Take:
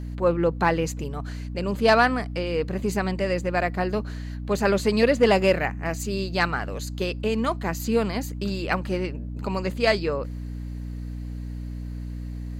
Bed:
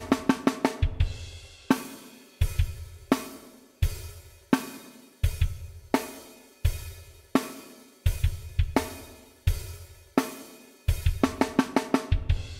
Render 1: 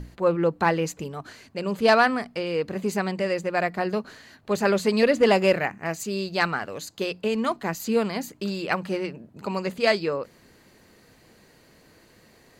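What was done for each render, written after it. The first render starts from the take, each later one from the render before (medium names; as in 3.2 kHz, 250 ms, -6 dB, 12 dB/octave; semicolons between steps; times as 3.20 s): hum notches 60/120/180/240/300 Hz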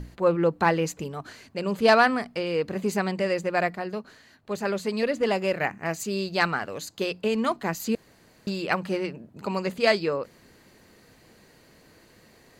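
3.75–5.60 s: gain -6 dB; 7.95–8.47 s: room tone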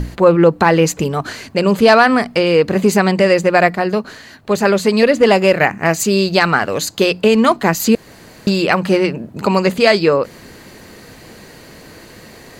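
in parallel at -2 dB: compression, threshold -31 dBFS, peak gain reduction 16 dB; on the sum: loudness maximiser +11.5 dB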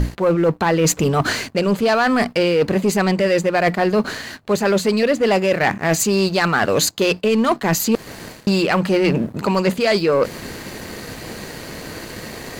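reverse; compression 8:1, threshold -20 dBFS, peak gain reduction 14.5 dB; reverse; waveshaping leveller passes 2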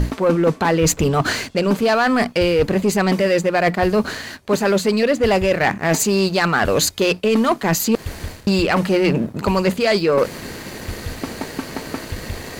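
add bed -5 dB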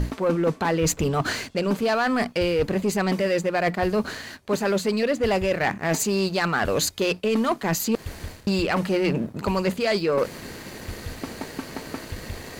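trim -6 dB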